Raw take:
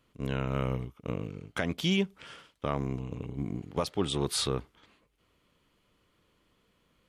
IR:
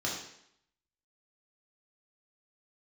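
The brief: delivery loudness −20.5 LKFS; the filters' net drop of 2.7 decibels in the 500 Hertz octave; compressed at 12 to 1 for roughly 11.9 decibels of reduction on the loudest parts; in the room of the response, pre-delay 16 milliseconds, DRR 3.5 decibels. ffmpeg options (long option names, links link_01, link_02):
-filter_complex "[0:a]equalizer=frequency=500:width_type=o:gain=-3.5,acompressor=threshold=-37dB:ratio=12,asplit=2[link_01][link_02];[1:a]atrim=start_sample=2205,adelay=16[link_03];[link_02][link_03]afir=irnorm=-1:irlink=0,volume=-9.5dB[link_04];[link_01][link_04]amix=inputs=2:normalize=0,volume=20.5dB"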